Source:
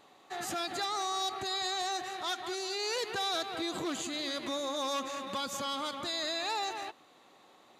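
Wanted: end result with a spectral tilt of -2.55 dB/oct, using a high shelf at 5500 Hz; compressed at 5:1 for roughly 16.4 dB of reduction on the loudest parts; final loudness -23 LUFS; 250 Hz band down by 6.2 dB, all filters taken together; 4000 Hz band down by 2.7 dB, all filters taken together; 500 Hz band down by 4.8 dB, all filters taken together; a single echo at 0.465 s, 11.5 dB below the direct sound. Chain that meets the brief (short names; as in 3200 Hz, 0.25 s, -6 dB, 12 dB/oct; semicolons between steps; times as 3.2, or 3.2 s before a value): bell 250 Hz -6.5 dB; bell 500 Hz -4.5 dB; bell 4000 Hz -4.5 dB; high shelf 5500 Hz +4.5 dB; compressor 5:1, threshold -52 dBFS; echo 0.465 s -11.5 dB; gain +28.5 dB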